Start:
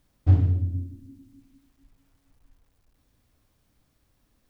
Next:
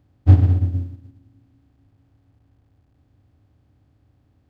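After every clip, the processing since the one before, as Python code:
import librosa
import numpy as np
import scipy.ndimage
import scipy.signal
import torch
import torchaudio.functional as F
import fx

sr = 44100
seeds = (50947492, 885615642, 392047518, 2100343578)

y = fx.bin_compress(x, sr, power=0.4)
y = fx.highpass(y, sr, hz=54.0, slope=6)
y = fx.upward_expand(y, sr, threshold_db=-32.0, expansion=2.5)
y = y * 10.0 ** (8.0 / 20.0)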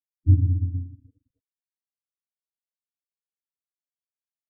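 y = fx.rider(x, sr, range_db=10, speed_s=2.0)
y = np.sign(y) * np.maximum(np.abs(y) - 10.0 ** (-46.5 / 20.0), 0.0)
y = fx.spec_topn(y, sr, count=8)
y = y * 10.0 ** (-5.0 / 20.0)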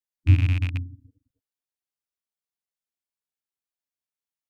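y = fx.rattle_buzz(x, sr, strikes_db=-24.0, level_db=-22.0)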